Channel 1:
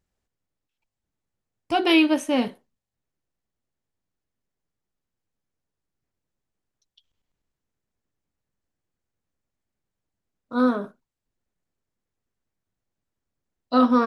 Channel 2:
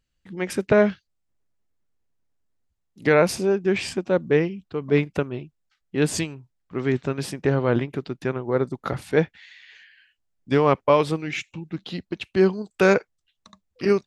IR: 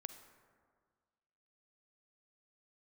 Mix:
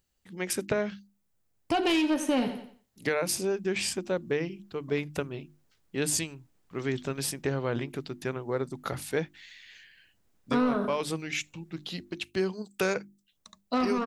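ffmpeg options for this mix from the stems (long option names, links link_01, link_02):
-filter_complex "[0:a]asoftclip=type=tanh:threshold=-17dB,dynaudnorm=framelen=460:gausssize=9:maxgain=13.5dB,volume=-2.5dB,asplit=3[link_01][link_02][link_03];[link_01]atrim=end=12.18,asetpts=PTS-STARTPTS,afade=type=out:start_time=12.176:duration=0.004:curve=hsin[link_04];[link_02]atrim=start=12.18:end=13.32,asetpts=PTS-STARTPTS,volume=0[link_05];[link_03]atrim=start=13.32,asetpts=PTS-STARTPTS,afade=type=in:duration=0.004:curve=hsin[link_06];[link_04][link_05][link_06]concat=n=3:v=0:a=1,asplit=2[link_07][link_08];[link_08]volume=-14dB[link_09];[1:a]aemphasis=mode=production:type=75kf,bandreject=frequency=50:width_type=h:width=6,bandreject=frequency=100:width_type=h:width=6,bandreject=frequency=150:width_type=h:width=6,bandreject=frequency=200:width_type=h:width=6,bandreject=frequency=250:width_type=h:width=6,bandreject=frequency=300:width_type=h:width=6,bandreject=frequency=350:width_type=h:width=6,volume=-6.5dB[link_10];[link_09]aecho=0:1:89|178|267|356:1|0.27|0.0729|0.0197[link_11];[link_07][link_10][link_11]amix=inputs=3:normalize=0,acompressor=threshold=-24dB:ratio=6"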